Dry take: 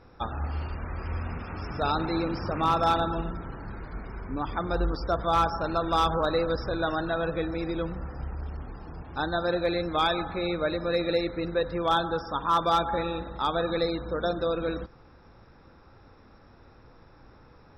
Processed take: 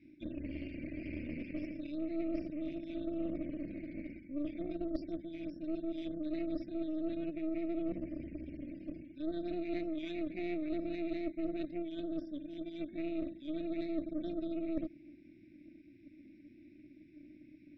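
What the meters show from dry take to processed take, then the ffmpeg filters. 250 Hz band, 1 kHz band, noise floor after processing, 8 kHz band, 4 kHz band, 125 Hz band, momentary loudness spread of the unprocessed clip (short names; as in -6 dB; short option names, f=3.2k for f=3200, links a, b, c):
-3.0 dB, under -25 dB, -59 dBFS, n/a, -22.5 dB, -17.5 dB, 13 LU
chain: -filter_complex "[0:a]asplit=3[a][b][c];[a]bandpass=f=300:t=q:w=8,volume=0dB[d];[b]bandpass=f=870:t=q:w=8,volume=-6dB[e];[c]bandpass=f=2.24k:t=q:w=8,volume=-9dB[f];[d][e][f]amix=inputs=3:normalize=0,adynamicequalizer=threshold=0.00251:dfrequency=330:dqfactor=7.3:tfrequency=330:tqfactor=7.3:attack=5:release=100:ratio=0.375:range=2.5:mode=boostabove:tftype=bell,areverse,acompressor=threshold=-45dB:ratio=20,areverse,afftfilt=real='re*(1-between(b*sr/4096,370,1500))':imag='im*(1-between(b*sr/4096,370,1500))':win_size=4096:overlap=0.75,aeval=exprs='0.0126*(cos(1*acos(clip(val(0)/0.0126,-1,1)))-cos(1*PI/2))+0.00631*(cos(2*acos(clip(val(0)/0.0126,-1,1)))-cos(2*PI/2))+0.000708*(cos(4*acos(clip(val(0)/0.0126,-1,1)))-cos(4*PI/2))+0.000562*(cos(6*acos(clip(val(0)/0.0126,-1,1)))-cos(6*PI/2))':c=same,volume=10.5dB"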